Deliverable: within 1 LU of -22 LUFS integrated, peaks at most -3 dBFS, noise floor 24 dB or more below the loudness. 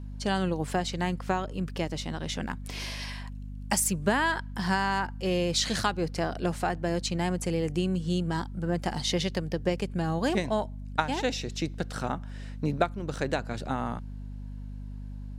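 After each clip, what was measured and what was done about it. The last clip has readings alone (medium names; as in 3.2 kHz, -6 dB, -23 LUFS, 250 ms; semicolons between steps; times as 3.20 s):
hum 50 Hz; highest harmonic 250 Hz; hum level -36 dBFS; loudness -30.0 LUFS; peak level -7.0 dBFS; loudness target -22.0 LUFS
-> hum notches 50/100/150/200/250 Hz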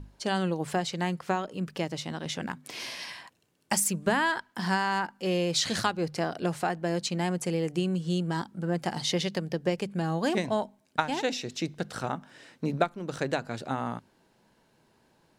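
hum not found; loudness -30.0 LUFS; peak level -7.0 dBFS; loudness target -22.0 LUFS
-> trim +8 dB; peak limiter -3 dBFS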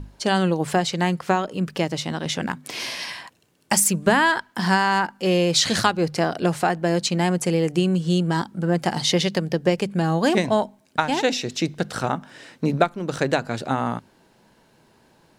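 loudness -22.5 LUFS; peak level -3.0 dBFS; noise floor -59 dBFS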